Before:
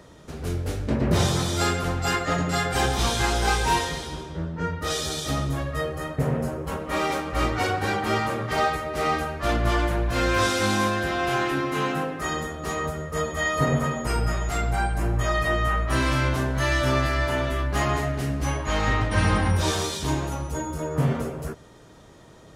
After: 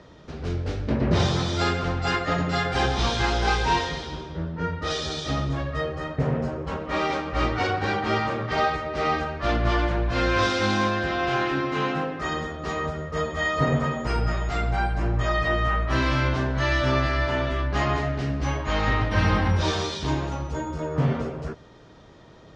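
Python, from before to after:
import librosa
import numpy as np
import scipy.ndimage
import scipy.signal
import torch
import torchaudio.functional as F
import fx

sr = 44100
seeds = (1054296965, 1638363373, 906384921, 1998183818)

y = scipy.signal.sosfilt(scipy.signal.butter(4, 5400.0, 'lowpass', fs=sr, output='sos'), x)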